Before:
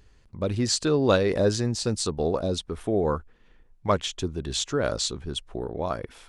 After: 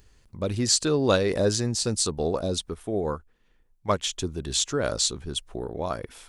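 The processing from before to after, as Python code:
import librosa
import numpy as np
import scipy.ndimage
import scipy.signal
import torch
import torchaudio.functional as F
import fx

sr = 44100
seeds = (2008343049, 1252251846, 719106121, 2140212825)

y = fx.high_shelf(x, sr, hz=6400.0, db=11.5)
y = fx.upward_expand(y, sr, threshold_db=-32.0, expansion=1.5, at=(2.74, 4.02))
y = y * librosa.db_to_amplitude(-1.0)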